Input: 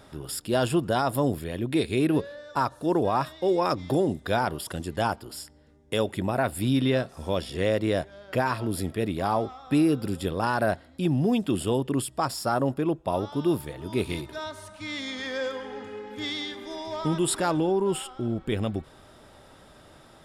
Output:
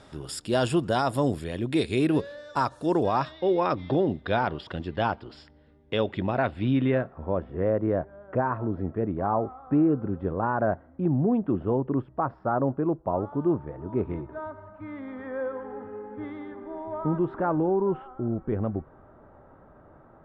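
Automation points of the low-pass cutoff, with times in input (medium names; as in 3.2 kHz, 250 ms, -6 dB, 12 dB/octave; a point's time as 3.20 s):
low-pass 24 dB/octave
2.94 s 9.1 kHz
3.46 s 3.8 kHz
6.42 s 3.8 kHz
6.91 s 2.3 kHz
7.29 s 1.4 kHz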